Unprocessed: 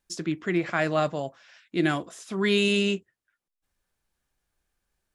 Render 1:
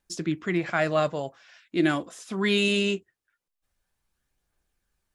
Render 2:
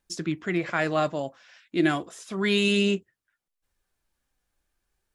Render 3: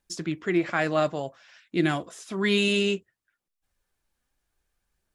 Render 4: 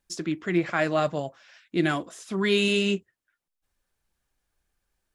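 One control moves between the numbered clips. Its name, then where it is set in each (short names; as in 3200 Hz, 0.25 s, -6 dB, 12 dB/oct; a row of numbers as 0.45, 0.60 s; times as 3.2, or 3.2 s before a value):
phaser, rate: 0.22, 0.34, 0.59, 1.7 Hz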